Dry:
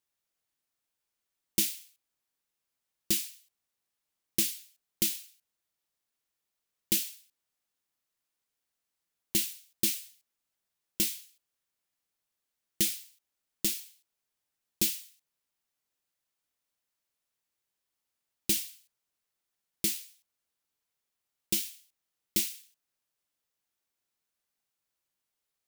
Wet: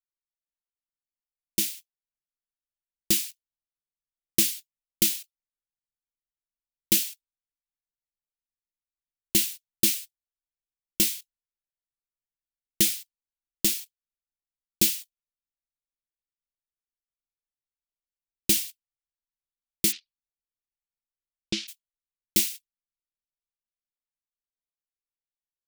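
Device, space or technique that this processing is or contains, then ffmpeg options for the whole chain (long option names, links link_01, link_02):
voice memo with heavy noise removal: -filter_complex "[0:a]asplit=3[link_01][link_02][link_03];[link_01]afade=type=out:start_time=19.91:duration=0.02[link_04];[link_02]lowpass=frequency=5100:width=0.5412,lowpass=frequency=5100:width=1.3066,afade=type=in:start_time=19.91:duration=0.02,afade=type=out:start_time=21.67:duration=0.02[link_05];[link_03]afade=type=in:start_time=21.67:duration=0.02[link_06];[link_04][link_05][link_06]amix=inputs=3:normalize=0,anlmdn=0.01,dynaudnorm=framelen=360:gausssize=13:maxgain=6dB"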